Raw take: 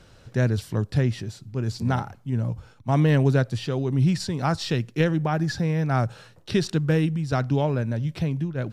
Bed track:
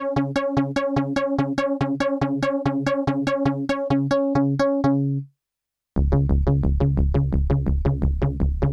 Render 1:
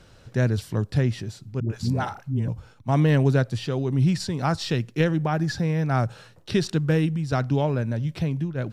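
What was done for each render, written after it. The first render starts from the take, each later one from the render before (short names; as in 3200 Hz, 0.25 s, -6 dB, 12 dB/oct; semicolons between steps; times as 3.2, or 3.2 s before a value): 1.6–2.48 dispersion highs, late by 0.1 s, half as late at 410 Hz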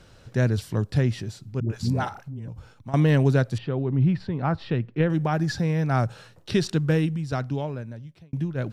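2.08–2.94 compressor 5:1, threshold -33 dBFS; 3.58–5.1 air absorption 420 m; 6.87–8.33 fade out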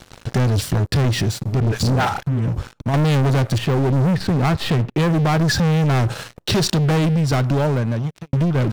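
sample leveller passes 5; compressor 3:1, threshold -17 dBFS, peak gain reduction 4.5 dB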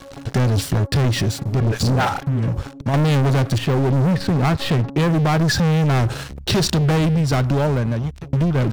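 add bed track -16 dB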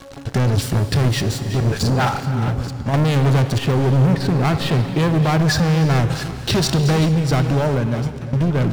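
reverse delay 0.451 s, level -12 dB; non-linear reverb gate 0.46 s flat, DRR 10 dB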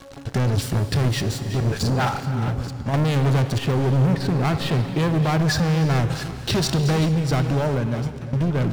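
gain -3.5 dB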